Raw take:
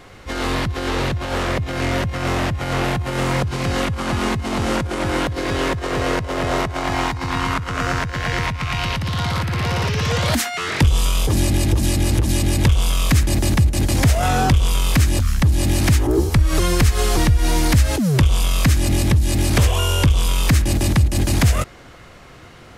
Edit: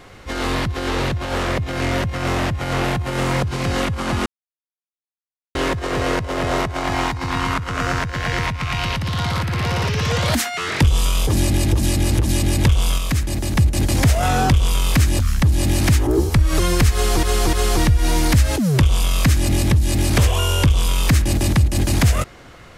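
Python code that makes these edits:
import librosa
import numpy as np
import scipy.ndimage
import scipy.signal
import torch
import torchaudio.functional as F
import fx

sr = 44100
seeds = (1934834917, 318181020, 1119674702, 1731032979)

y = fx.edit(x, sr, fx.silence(start_s=4.26, length_s=1.29),
    fx.clip_gain(start_s=12.98, length_s=0.57, db=-4.5),
    fx.repeat(start_s=16.93, length_s=0.3, count=3), tone=tone)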